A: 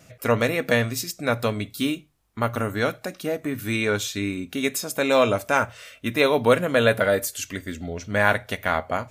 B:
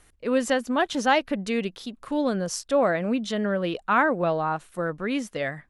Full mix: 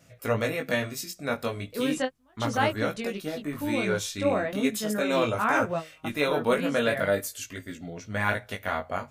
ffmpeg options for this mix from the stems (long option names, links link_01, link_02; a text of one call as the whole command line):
ffmpeg -i stem1.wav -i stem2.wav -filter_complex "[0:a]volume=-3dB,asplit=2[link_01][link_02];[1:a]adelay=1500,volume=-2dB[link_03];[link_02]apad=whole_len=317512[link_04];[link_03][link_04]sidechaingate=range=-35dB:threshold=-41dB:ratio=16:detection=peak[link_05];[link_01][link_05]amix=inputs=2:normalize=0,flanger=delay=18:depth=3.3:speed=0.38" out.wav